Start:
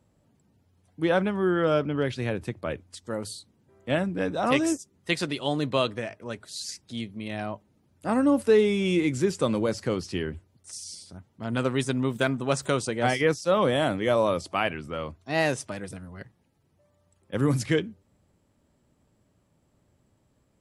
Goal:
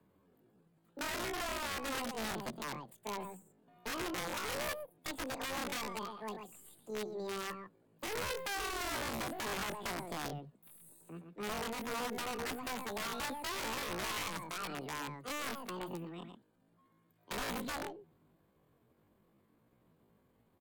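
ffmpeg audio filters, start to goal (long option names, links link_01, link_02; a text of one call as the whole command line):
ffmpeg -i in.wav -filter_complex "[0:a]aeval=exprs='(tanh(12.6*val(0)+0.2)-tanh(0.2))/12.6':channel_layout=same,acrossover=split=100|2000[link_01][link_02][link_03];[link_01]acompressor=threshold=-44dB:ratio=4[link_04];[link_02]acompressor=threshold=-31dB:ratio=4[link_05];[link_03]acompressor=threshold=-53dB:ratio=4[link_06];[link_04][link_05][link_06]amix=inputs=3:normalize=0,lowshelf=frequency=170:gain=3.5,acrossover=split=140|1200|2200[link_07][link_08][link_09][link_10];[link_09]acompressor=threshold=-53dB:ratio=16[link_11];[link_07][link_08][link_11][link_10]amix=inputs=4:normalize=0,equalizer=frequency=3100:width_type=o:width=0.35:gain=-13,asplit=2[link_12][link_13];[link_13]adelay=116.6,volume=-7dB,highshelf=frequency=4000:gain=-2.62[link_14];[link_12][link_14]amix=inputs=2:normalize=0,aeval=exprs='(mod(22.4*val(0)+1,2)-1)/22.4':channel_layout=same,aresample=22050,aresample=44100,asetrate=80880,aresample=44100,atempo=0.545254,volume=-5.5dB" out.wav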